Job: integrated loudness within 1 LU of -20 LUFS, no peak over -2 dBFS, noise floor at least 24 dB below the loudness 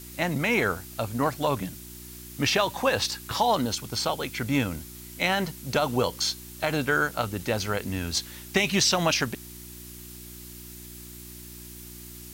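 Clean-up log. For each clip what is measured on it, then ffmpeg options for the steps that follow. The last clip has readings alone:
hum 60 Hz; harmonics up to 360 Hz; hum level -44 dBFS; noise floor -43 dBFS; noise floor target -51 dBFS; loudness -26.5 LUFS; peak -10.5 dBFS; loudness target -20.0 LUFS
-> -af "bandreject=f=60:t=h:w=4,bandreject=f=120:t=h:w=4,bandreject=f=180:t=h:w=4,bandreject=f=240:t=h:w=4,bandreject=f=300:t=h:w=4,bandreject=f=360:t=h:w=4"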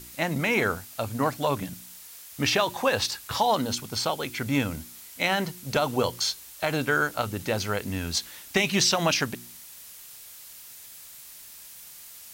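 hum none; noise floor -46 dBFS; noise floor target -51 dBFS
-> -af "afftdn=nr=6:nf=-46"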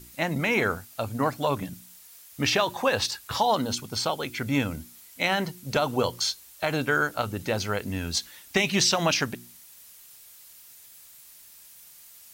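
noise floor -51 dBFS; loudness -26.5 LUFS; peak -10.5 dBFS; loudness target -20.0 LUFS
-> -af "volume=6.5dB"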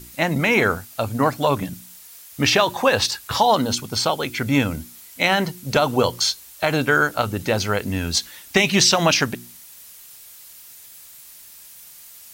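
loudness -20.0 LUFS; peak -4.0 dBFS; noise floor -44 dBFS

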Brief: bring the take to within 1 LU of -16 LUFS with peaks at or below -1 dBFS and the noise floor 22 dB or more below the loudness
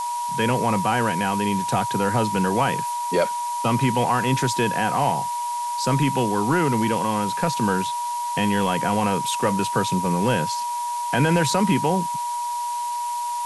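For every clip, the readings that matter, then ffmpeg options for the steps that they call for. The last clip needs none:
steady tone 960 Hz; tone level -24 dBFS; noise floor -27 dBFS; noise floor target -45 dBFS; loudness -22.5 LUFS; peak -8.0 dBFS; loudness target -16.0 LUFS
-> -af "bandreject=f=960:w=30"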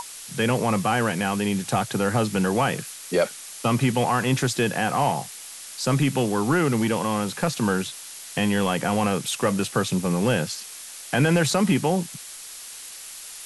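steady tone none; noise floor -40 dBFS; noise floor target -46 dBFS
-> -af "afftdn=nr=6:nf=-40"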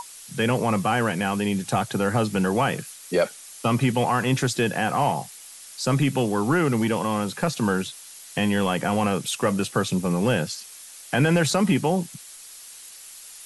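noise floor -44 dBFS; noise floor target -46 dBFS
-> -af "afftdn=nr=6:nf=-44"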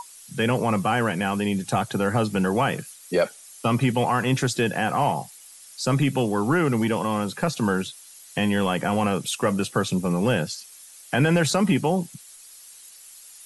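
noise floor -47 dBFS; loudness -23.5 LUFS; peak -9.5 dBFS; loudness target -16.0 LUFS
-> -af "volume=7.5dB"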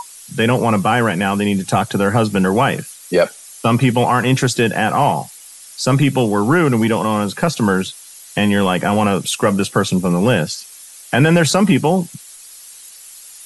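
loudness -16.0 LUFS; peak -2.0 dBFS; noise floor -39 dBFS

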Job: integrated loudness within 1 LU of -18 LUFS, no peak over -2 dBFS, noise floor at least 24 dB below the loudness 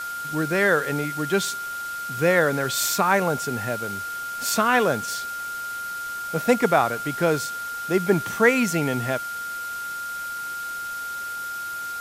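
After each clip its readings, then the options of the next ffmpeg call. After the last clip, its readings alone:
steady tone 1400 Hz; tone level -29 dBFS; noise floor -32 dBFS; noise floor target -48 dBFS; loudness -24.0 LUFS; peak -4.5 dBFS; loudness target -18.0 LUFS
-> -af "bandreject=f=1.4k:w=30"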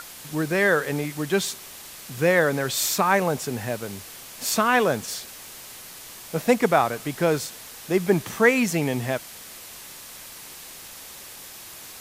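steady tone none; noise floor -42 dBFS; noise floor target -48 dBFS
-> -af "afftdn=nr=6:nf=-42"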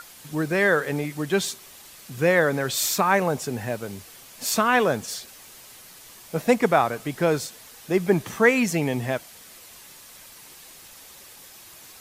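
noise floor -47 dBFS; noise floor target -48 dBFS
-> -af "afftdn=nr=6:nf=-47"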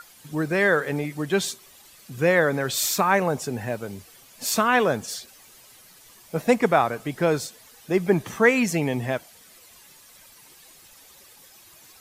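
noise floor -51 dBFS; loudness -23.5 LUFS; peak -4.5 dBFS; loudness target -18.0 LUFS
-> -af "volume=5.5dB,alimiter=limit=-2dB:level=0:latency=1"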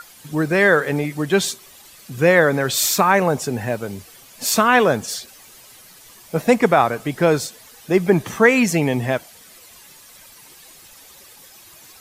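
loudness -18.0 LUFS; peak -2.0 dBFS; noise floor -46 dBFS

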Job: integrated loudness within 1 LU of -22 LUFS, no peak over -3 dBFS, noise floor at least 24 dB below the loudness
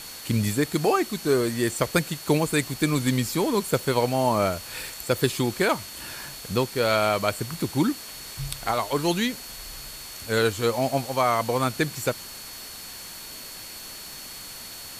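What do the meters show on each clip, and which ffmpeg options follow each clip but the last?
steady tone 4400 Hz; tone level -43 dBFS; noise floor -40 dBFS; noise floor target -49 dBFS; loudness -25.0 LUFS; peak -6.5 dBFS; loudness target -22.0 LUFS
-> -af "bandreject=f=4.4k:w=30"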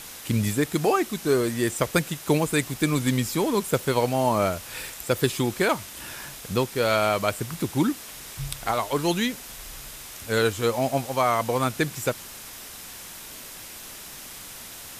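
steady tone none; noise floor -41 dBFS; noise floor target -49 dBFS
-> -af "afftdn=nr=8:nf=-41"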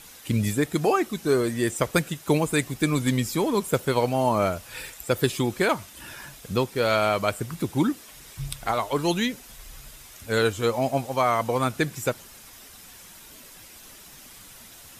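noise floor -47 dBFS; noise floor target -49 dBFS
-> -af "afftdn=nr=6:nf=-47"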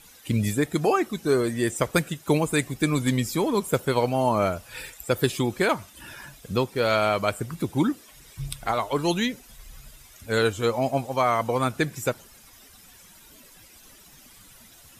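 noise floor -51 dBFS; loudness -25.0 LUFS; peak -7.0 dBFS; loudness target -22.0 LUFS
-> -af "volume=3dB"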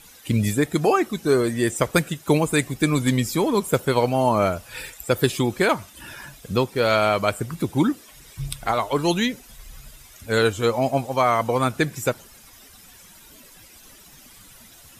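loudness -22.0 LUFS; peak -4.0 dBFS; noise floor -48 dBFS

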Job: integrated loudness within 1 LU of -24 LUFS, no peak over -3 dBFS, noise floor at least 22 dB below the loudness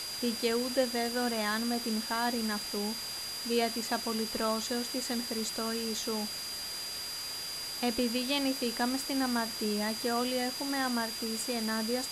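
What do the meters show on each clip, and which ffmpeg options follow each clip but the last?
steady tone 4800 Hz; tone level -38 dBFS; noise floor -39 dBFS; noise floor target -54 dBFS; loudness -32.0 LUFS; peak -15.0 dBFS; loudness target -24.0 LUFS
-> -af "bandreject=f=4.8k:w=30"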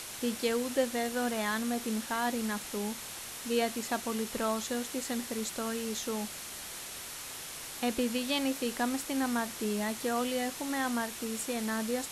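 steady tone none; noise floor -43 dBFS; noise floor target -55 dBFS
-> -af "afftdn=nr=12:nf=-43"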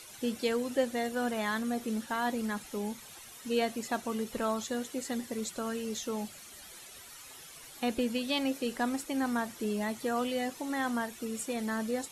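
noise floor -50 dBFS; noise floor target -56 dBFS
-> -af "afftdn=nr=6:nf=-50"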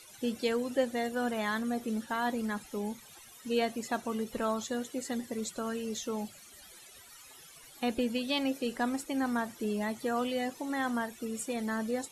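noise floor -54 dBFS; noise floor target -56 dBFS
-> -af "afftdn=nr=6:nf=-54"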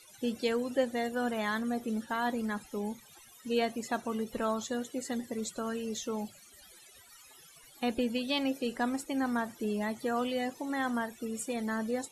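noise floor -57 dBFS; loudness -33.5 LUFS; peak -16.0 dBFS; loudness target -24.0 LUFS
-> -af "volume=9.5dB"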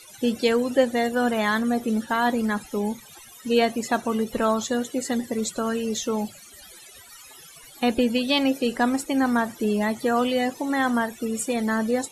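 loudness -24.0 LUFS; peak -6.5 dBFS; noise floor -47 dBFS

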